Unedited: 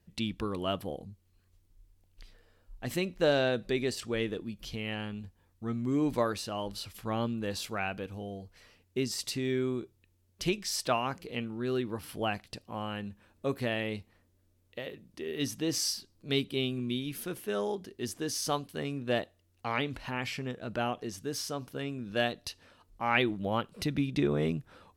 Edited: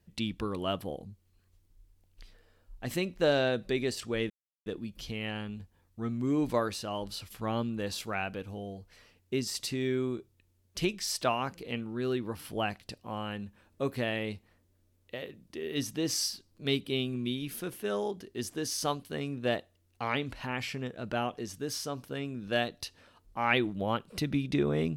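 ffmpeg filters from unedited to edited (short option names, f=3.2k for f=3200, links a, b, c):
-filter_complex "[0:a]asplit=2[a][b];[a]atrim=end=4.3,asetpts=PTS-STARTPTS,afade=t=out:st=4.296:d=0.004:c=hsin,apad=pad_dur=0.36[c];[b]atrim=start=4.3,asetpts=PTS-STARTPTS,afade=t=in:d=0.004:c=hsin[d];[c][d]concat=n=2:v=0:a=1"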